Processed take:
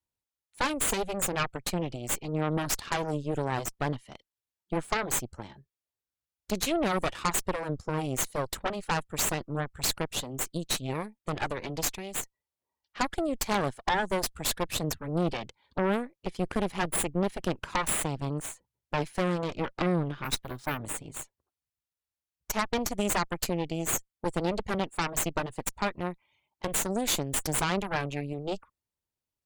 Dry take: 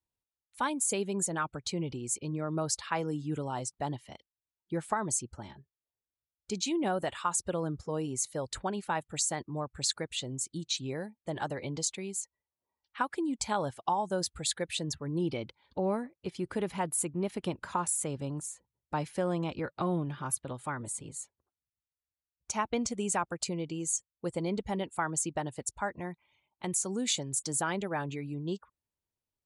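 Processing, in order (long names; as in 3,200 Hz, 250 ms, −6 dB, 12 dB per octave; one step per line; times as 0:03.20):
0:20.24–0:20.78: bad sample-rate conversion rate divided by 3×, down none, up hold
harmonic generator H 8 −11 dB, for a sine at −15.5 dBFS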